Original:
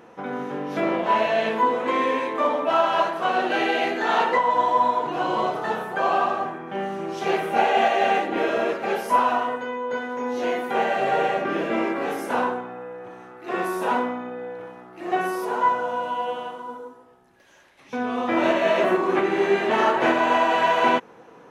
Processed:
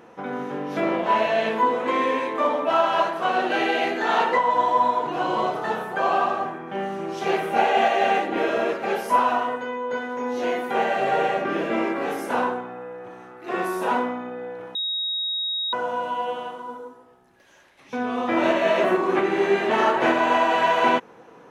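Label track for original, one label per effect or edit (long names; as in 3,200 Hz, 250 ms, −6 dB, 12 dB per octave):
14.750000	15.730000	beep over 3,780 Hz −23.5 dBFS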